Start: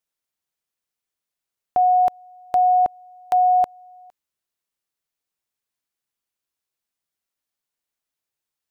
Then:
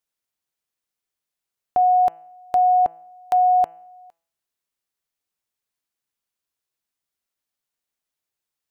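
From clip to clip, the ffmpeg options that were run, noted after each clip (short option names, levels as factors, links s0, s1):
-af "bandreject=f=167:t=h:w=4,bandreject=f=334:t=h:w=4,bandreject=f=501:t=h:w=4,bandreject=f=668:t=h:w=4,bandreject=f=835:t=h:w=4,bandreject=f=1002:t=h:w=4,bandreject=f=1169:t=h:w=4,bandreject=f=1336:t=h:w=4,bandreject=f=1503:t=h:w=4,bandreject=f=1670:t=h:w=4,bandreject=f=1837:t=h:w=4,bandreject=f=2004:t=h:w=4,bandreject=f=2171:t=h:w=4,bandreject=f=2338:t=h:w=4,bandreject=f=2505:t=h:w=4,bandreject=f=2672:t=h:w=4,bandreject=f=2839:t=h:w=4,bandreject=f=3006:t=h:w=4"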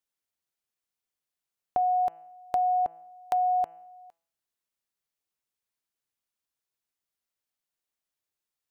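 -af "acompressor=threshold=0.112:ratio=6,volume=0.631"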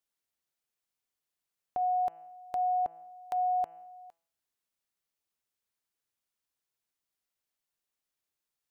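-af "alimiter=level_in=1.12:limit=0.0631:level=0:latency=1:release=158,volume=0.891"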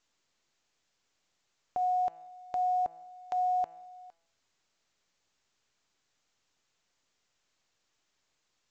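-ar 16000 -c:a pcm_mulaw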